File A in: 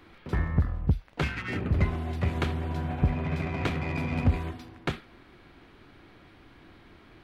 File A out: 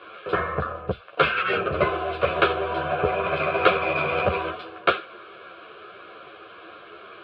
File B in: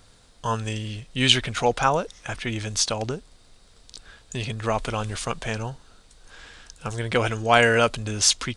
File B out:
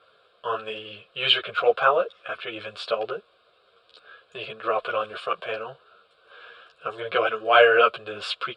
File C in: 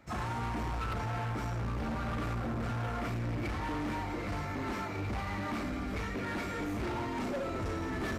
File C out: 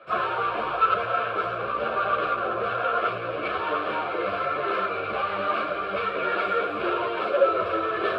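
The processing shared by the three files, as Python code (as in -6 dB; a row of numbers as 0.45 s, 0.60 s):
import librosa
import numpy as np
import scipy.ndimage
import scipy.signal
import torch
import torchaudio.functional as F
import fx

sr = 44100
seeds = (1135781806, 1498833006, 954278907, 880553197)

y = fx.bandpass_edges(x, sr, low_hz=420.0, high_hz=2400.0)
y = fx.fixed_phaser(y, sr, hz=1300.0, stages=8)
y = fx.ensemble(y, sr)
y = y * 10.0 ** (-26 / 20.0) / np.sqrt(np.mean(np.square(y)))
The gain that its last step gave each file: +21.5 dB, +8.5 dB, +20.5 dB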